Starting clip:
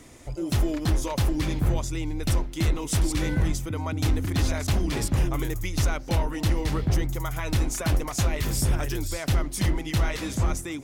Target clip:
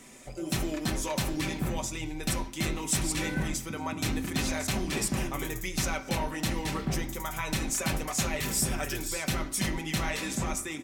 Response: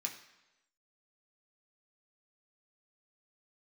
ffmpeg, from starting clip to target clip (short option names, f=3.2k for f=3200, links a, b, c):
-filter_complex "[0:a]aecho=1:1:5.2:0.39,asplit=2[a][b];[1:a]atrim=start_sample=2205,afade=t=out:st=0.24:d=0.01,atrim=end_sample=11025[c];[b][c]afir=irnorm=-1:irlink=0,volume=2.5dB[d];[a][d]amix=inputs=2:normalize=0,volume=-6.5dB"